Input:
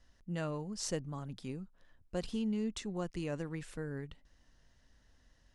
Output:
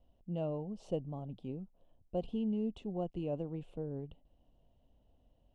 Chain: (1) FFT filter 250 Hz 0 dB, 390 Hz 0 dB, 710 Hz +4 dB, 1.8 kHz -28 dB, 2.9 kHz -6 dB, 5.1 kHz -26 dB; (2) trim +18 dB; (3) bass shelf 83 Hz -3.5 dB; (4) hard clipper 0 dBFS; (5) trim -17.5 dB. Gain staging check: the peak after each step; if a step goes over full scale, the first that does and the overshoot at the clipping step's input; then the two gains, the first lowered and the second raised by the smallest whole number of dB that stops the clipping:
-23.5 dBFS, -5.5 dBFS, -5.5 dBFS, -5.5 dBFS, -23.0 dBFS; nothing clips

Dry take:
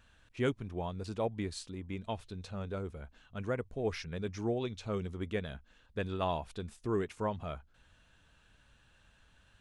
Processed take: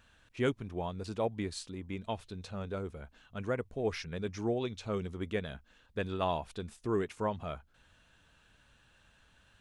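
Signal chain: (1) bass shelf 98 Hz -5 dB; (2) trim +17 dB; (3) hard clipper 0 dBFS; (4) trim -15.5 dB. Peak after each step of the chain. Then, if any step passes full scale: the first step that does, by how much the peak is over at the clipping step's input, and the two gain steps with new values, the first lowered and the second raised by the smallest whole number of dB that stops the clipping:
-19.5 dBFS, -2.5 dBFS, -2.5 dBFS, -18.0 dBFS; nothing clips

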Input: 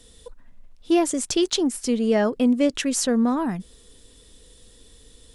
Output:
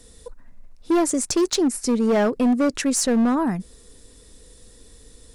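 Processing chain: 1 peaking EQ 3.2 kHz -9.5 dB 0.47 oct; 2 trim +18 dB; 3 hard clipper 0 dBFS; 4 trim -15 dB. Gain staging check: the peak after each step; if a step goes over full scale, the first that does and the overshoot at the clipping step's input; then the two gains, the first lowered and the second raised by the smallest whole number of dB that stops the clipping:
-10.0 dBFS, +8.0 dBFS, 0.0 dBFS, -15.0 dBFS; step 2, 8.0 dB; step 2 +10 dB, step 4 -7 dB

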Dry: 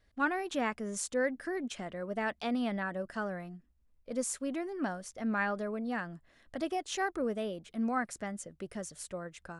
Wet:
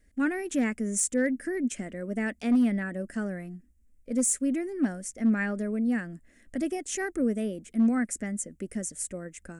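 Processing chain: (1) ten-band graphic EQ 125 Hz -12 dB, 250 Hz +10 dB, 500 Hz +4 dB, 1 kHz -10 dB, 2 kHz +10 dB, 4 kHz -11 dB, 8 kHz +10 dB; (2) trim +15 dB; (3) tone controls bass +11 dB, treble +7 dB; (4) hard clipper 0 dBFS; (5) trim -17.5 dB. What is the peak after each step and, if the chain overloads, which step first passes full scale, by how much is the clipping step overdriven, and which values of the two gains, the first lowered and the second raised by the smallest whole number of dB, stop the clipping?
-15.5 dBFS, -0.5 dBFS, +5.5 dBFS, 0.0 dBFS, -17.5 dBFS; step 3, 5.5 dB; step 2 +9 dB, step 5 -11.5 dB

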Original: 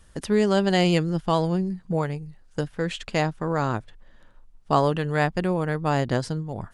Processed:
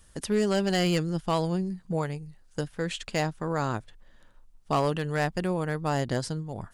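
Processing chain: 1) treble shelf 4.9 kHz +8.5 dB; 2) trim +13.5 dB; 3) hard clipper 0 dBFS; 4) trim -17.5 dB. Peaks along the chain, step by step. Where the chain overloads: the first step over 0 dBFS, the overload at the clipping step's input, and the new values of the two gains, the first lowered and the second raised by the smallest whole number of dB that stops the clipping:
-5.5 dBFS, +8.0 dBFS, 0.0 dBFS, -17.5 dBFS; step 2, 8.0 dB; step 2 +5.5 dB, step 4 -9.5 dB

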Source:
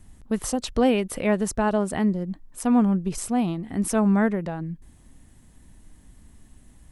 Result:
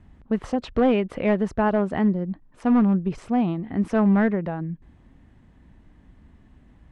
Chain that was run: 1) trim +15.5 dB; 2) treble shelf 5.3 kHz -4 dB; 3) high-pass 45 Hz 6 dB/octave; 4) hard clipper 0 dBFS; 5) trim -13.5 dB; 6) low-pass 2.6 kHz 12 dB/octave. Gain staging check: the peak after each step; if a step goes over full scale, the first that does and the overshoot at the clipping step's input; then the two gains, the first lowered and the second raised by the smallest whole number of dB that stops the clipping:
+6.0 dBFS, +6.0 dBFS, +5.5 dBFS, 0.0 dBFS, -13.5 dBFS, -13.0 dBFS; step 1, 5.5 dB; step 1 +9.5 dB, step 5 -7.5 dB

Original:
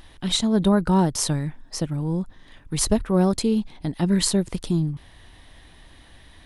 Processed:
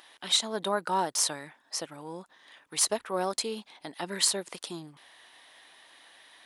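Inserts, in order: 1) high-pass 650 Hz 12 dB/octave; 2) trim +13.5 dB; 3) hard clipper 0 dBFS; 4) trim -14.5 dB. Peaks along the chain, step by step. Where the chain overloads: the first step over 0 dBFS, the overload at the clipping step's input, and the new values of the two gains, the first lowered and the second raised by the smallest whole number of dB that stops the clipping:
-4.5 dBFS, +9.0 dBFS, 0.0 dBFS, -14.5 dBFS; step 2, 9.0 dB; step 2 +4.5 dB, step 4 -5.5 dB

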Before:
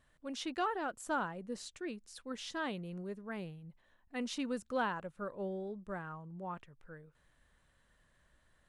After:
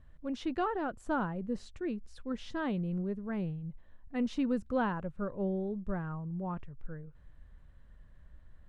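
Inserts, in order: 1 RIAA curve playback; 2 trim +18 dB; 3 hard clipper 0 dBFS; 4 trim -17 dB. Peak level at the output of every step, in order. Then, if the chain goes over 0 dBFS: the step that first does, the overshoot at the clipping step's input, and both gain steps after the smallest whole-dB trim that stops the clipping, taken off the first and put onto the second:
-21.5 dBFS, -3.5 dBFS, -3.5 dBFS, -20.5 dBFS; nothing clips

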